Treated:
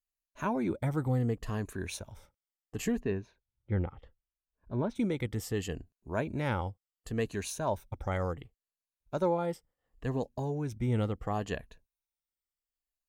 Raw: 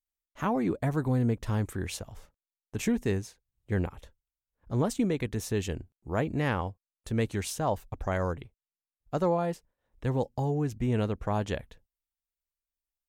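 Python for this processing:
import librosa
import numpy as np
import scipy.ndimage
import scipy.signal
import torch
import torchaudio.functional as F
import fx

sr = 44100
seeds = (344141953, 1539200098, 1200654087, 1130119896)

y = fx.spec_ripple(x, sr, per_octave=1.5, drift_hz=-0.7, depth_db=9)
y = fx.air_absorb(y, sr, metres=310.0, at=(2.99, 4.95), fade=0.02)
y = y * librosa.db_to_amplitude(-4.0)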